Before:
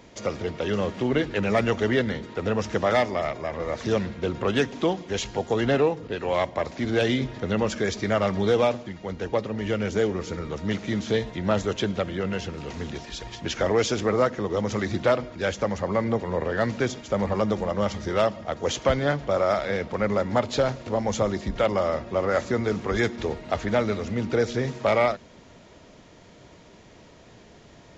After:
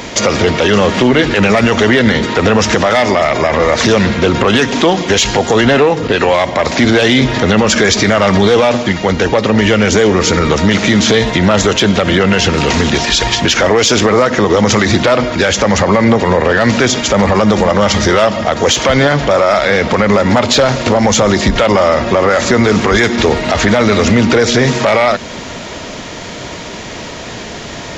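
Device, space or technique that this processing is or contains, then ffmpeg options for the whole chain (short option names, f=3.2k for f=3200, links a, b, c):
mastering chain: -af "equalizer=f=240:t=o:w=0.39:g=2.5,acompressor=threshold=-29dB:ratio=1.5,asoftclip=type=tanh:threshold=-18.5dB,tiltshelf=f=730:g=-4,alimiter=level_in=26dB:limit=-1dB:release=50:level=0:latency=1,volume=-1dB"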